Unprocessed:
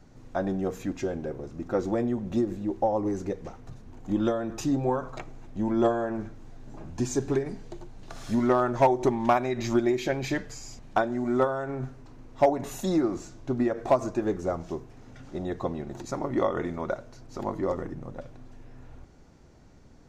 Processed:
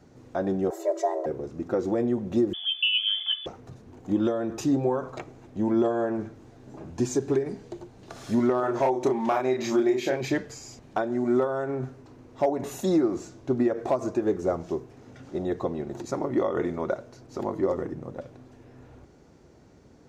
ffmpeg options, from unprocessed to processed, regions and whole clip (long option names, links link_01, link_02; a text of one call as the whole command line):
ffmpeg -i in.wav -filter_complex "[0:a]asettb=1/sr,asplit=3[link_01][link_02][link_03];[link_01]atrim=end=0.704[link_04];[link_02]atrim=start=0.7:end=1.26,asetpts=PTS-STARTPTS,afade=type=in:duration=0.004:curve=qsin,afade=type=out:start_time=0.556:duration=0.004:curve=qsin,afreqshift=310,equalizer=frequency=2700:width=1.9:gain=-14.5,aecho=1:1:3.1:0.86,atrim=end_sample=24696[link_05];[link_03]atrim=start=1.256[link_06];[link_04][link_05]acrossfade=duration=0.004:curve1=hsin:curve2=qsin[link_07];[link_07][link_06]acrossfade=duration=0.004:curve1=qsin:curve2=hsin,asettb=1/sr,asplit=3[link_08][link_09][link_10];[link_08]atrim=end=2.534[link_11];[link_09]atrim=start=2.53:end=3.46,asetpts=PTS-STARTPTS,afade=type=in:duration=0.004:curve=qsin,afade=type=out:start_time=0.926:duration=0.004:curve=qsin,aecho=1:1:2.2:0.9,atrim=end_sample=41013,lowpass=frequency=3000:width_type=q:width=0.5098,lowpass=frequency=3000:width_type=q:width=0.6013,lowpass=frequency=3000:width_type=q:width=0.9,lowpass=frequency=3000:width_type=q:width=2.563,afreqshift=-3500[link_12];[link_10]atrim=start=3.456[link_13];[link_11][link_12]acrossfade=duration=0.004:curve1=hsin:curve2=qsin[link_14];[link_14][link_13]acrossfade=duration=0.004:curve1=qsin:curve2=hsin,asettb=1/sr,asplit=3[link_15][link_16][link_17];[link_15]atrim=end=8.604[link_18];[link_16]atrim=start=8.6:end=10.21,asetpts=PTS-STARTPTS,afade=type=in:duration=0.004:curve=qsin,afade=type=out:start_time=1.606:duration=0.004:curve=qsin,lowshelf=frequency=180:gain=-9.5,asplit=2[link_19][link_20];[link_20]adelay=31,volume=-2.5dB[link_21];[link_19][link_21]amix=inputs=2:normalize=0,atrim=end_sample=71001[link_22];[link_17]atrim=start=10.206[link_23];[link_18][link_22]acrossfade=duration=0.004:curve1=hsin:curve2=qsin[link_24];[link_24][link_23]acrossfade=duration=0.004:curve1=qsin:curve2=hsin,highpass=66,equalizer=frequency=410:width_type=o:width=1:gain=5.5,alimiter=limit=-14.5dB:level=0:latency=1:release=151" out.wav